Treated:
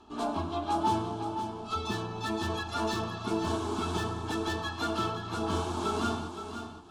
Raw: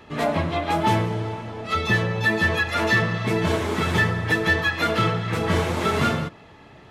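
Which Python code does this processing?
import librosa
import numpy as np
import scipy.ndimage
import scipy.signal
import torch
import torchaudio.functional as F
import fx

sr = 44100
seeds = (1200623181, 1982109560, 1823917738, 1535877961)

y = scipy.signal.sosfilt(scipy.signal.butter(4, 10000.0, 'lowpass', fs=sr, output='sos'), x)
y = fx.notch(y, sr, hz=2500.0, q=21.0)
y = np.clip(y, -10.0 ** (-14.0 / 20.0), 10.0 ** (-14.0 / 20.0))
y = fx.fixed_phaser(y, sr, hz=530.0, stages=6)
y = fx.echo_feedback(y, sr, ms=519, feedback_pct=20, wet_db=-9.0)
y = y * 10.0 ** (-5.0 / 20.0)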